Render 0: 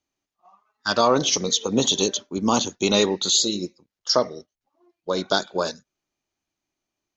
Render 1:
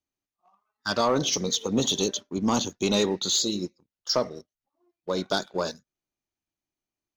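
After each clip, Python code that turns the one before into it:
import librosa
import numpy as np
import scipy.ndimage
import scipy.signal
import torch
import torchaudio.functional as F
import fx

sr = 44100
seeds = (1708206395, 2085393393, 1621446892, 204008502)

y = fx.low_shelf(x, sr, hz=230.0, db=5.5)
y = fx.leveller(y, sr, passes=1)
y = F.gain(torch.from_numpy(y), -8.0).numpy()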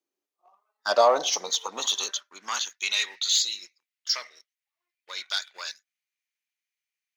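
y = fx.filter_sweep_highpass(x, sr, from_hz=370.0, to_hz=2100.0, start_s=0.16, end_s=2.91, q=2.9)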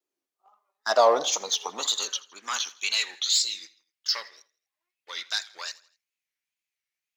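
y = fx.wow_flutter(x, sr, seeds[0], rate_hz=2.1, depth_cents=140.0)
y = fx.echo_feedback(y, sr, ms=82, feedback_pct=45, wet_db=-21.5)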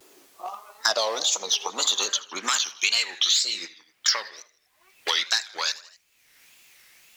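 y = fx.wow_flutter(x, sr, seeds[1], rate_hz=2.1, depth_cents=100.0)
y = fx.band_squash(y, sr, depth_pct=100)
y = F.gain(torch.from_numpy(y), 4.0).numpy()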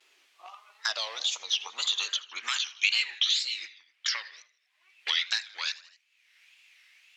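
y = fx.bandpass_q(x, sr, hz=2600.0, q=1.6)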